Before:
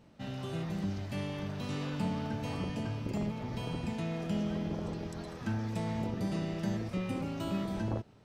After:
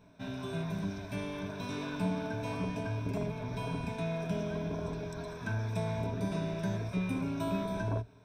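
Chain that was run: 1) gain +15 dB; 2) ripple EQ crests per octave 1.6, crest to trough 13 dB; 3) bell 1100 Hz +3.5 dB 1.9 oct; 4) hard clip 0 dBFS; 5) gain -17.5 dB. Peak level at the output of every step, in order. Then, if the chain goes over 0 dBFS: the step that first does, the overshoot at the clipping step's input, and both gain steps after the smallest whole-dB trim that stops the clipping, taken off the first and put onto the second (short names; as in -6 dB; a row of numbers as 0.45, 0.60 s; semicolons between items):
-6.5, -3.5, -3.0, -3.0, -20.5 dBFS; no overload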